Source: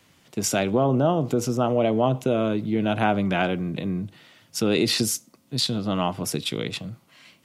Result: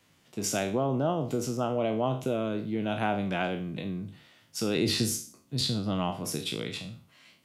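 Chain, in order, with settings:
peak hold with a decay on every bin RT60 0.41 s
0:04.76–0:06.11: low-shelf EQ 140 Hz +9.5 dB
level −7.5 dB

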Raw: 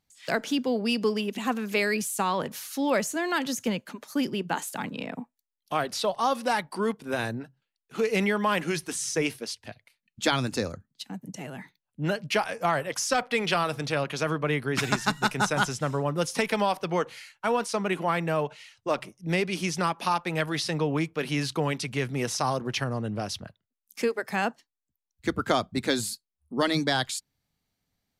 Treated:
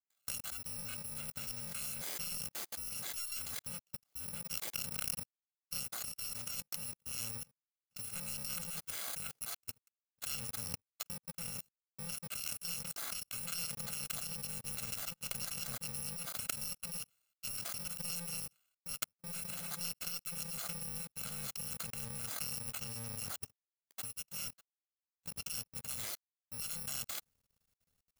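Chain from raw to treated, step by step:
samples in bit-reversed order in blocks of 128 samples
output level in coarse steps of 20 dB
power curve on the samples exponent 2
reversed playback
upward compression, threshold −58 dBFS
reversed playback
level +11.5 dB

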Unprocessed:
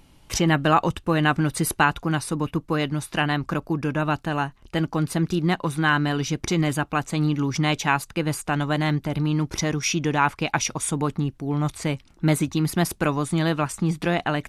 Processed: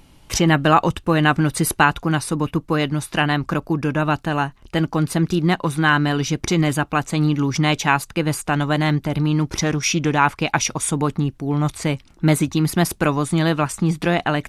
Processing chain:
0:09.51–0:10.11: highs frequency-modulated by the lows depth 0.15 ms
level +4 dB

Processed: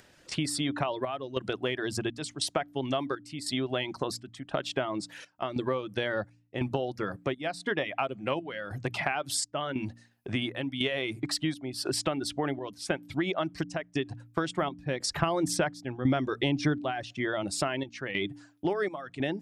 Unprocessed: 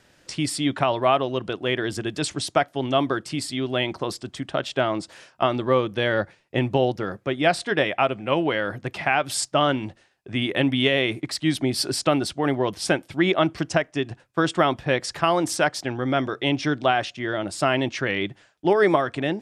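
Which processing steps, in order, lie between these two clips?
reverb reduction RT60 0.57 s
upward compression, threshold −39 dBFS
gate pattern "...xxxxxxx" 143 BPM −12 dB
hum removal 58.48 Hz, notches 5
downward compressor 6 to 1, threshold −29 dBFS, peak gain reduction 14.5 dB
0:14.62–0:17.13: low-shelf EQ 310 Hz +8 dB
level +2 dB

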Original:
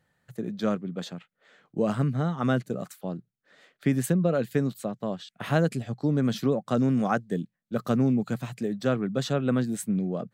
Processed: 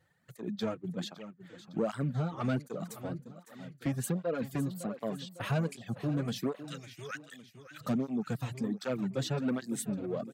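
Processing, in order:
0:06.55–0:07.81: inverse Chebyshev high-pass filter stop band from 550 Hz, stop band 60 dB
reverb reduction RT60 0.66 s
in parallel at 0 dB: downward compressor, threshold −32 dBFS, peak gain reduction 13.5 dB
on the sum: soft clipping −18.5 dBFS, distortion −14 dB
on a send: repeating echo 558 ms, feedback 45%, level −13.5 dB
on the sum: through-zero flanger with one copy inverted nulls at 1.3 Hz, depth 5.2 ms
level −3.5 dB

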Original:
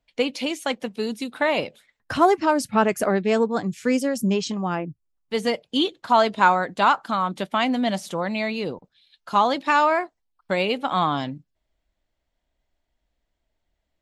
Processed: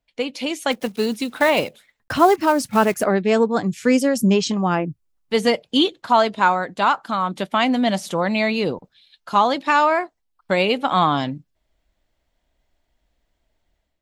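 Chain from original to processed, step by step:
0:00.71–0:03.04: one scale factor per block 5 bits
automatic gain control gain up to 9 dB
level −2.5 dB

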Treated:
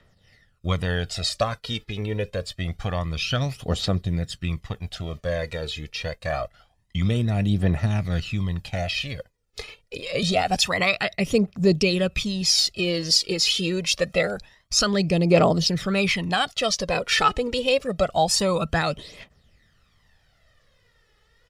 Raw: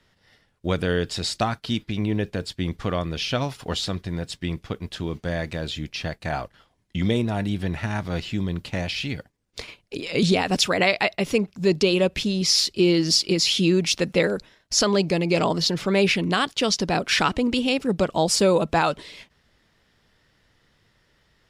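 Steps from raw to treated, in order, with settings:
phase shifter 0.26 Hz, delay 2.4 ms, feedback 60%
comb filter 1.6 ms, depth 37%
level −2.5 dB

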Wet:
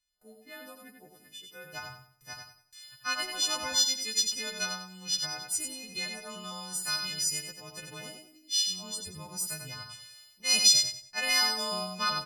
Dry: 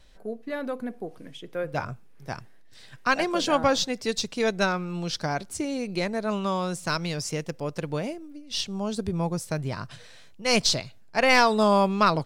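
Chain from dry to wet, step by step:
every partial snapped to a pitch grid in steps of 3 semitones
noise gate with hold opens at −41 dBFS
guitar amp tone stack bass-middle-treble 5-5-5
repeating echo 93 ms, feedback 30%, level −5 dB

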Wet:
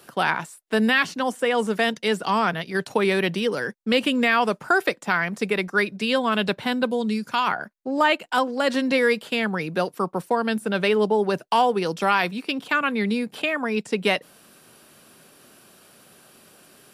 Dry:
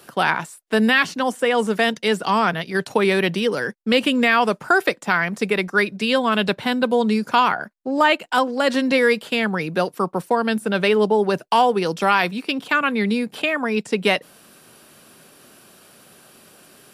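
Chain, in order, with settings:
0:06.89–0:07.46: parametric band 1,400 Hz → 360 Hz −8 dB 2.4 octaves
level −3 dB

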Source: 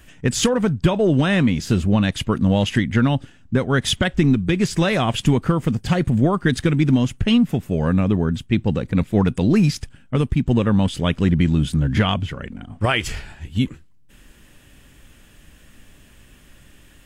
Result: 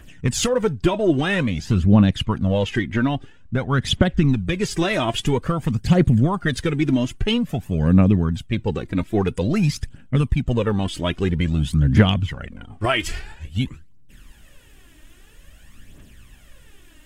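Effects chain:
0:01.60–0:04.29: low-pass filter 3,900 Hz 6 dB per octave
phase shifter 0.5 Hz, delay 3.3 ms, feedback 57%
level −2.5 dB

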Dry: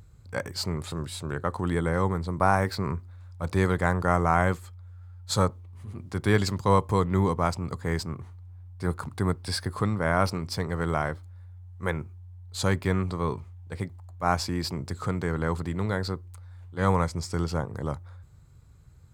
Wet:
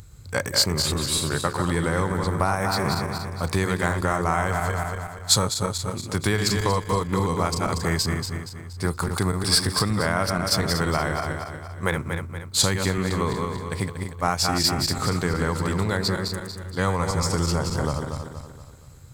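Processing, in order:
feedback delay that plays each chunk backwards 118 ms, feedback 65%, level −6 dB
downward compressor, threshold −25 dBFS, peak gain reduction 10.5 dB
high-shelf EQ 2,700 Hz +10 dB
level +5.5 dB

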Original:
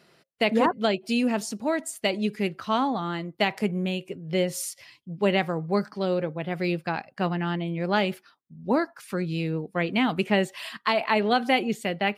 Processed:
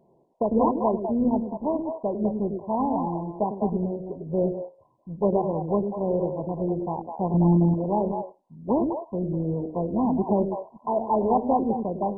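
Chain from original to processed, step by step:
0:07.34–0:07.74: spectral tilt −3.5 dB per octave
on a send: echo through a band-pass that steps 101 ms, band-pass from 290 Hz, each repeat 1.4 octaves, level −2 dB
on the sum: MP2 8 kbit/s 22,050 Hz

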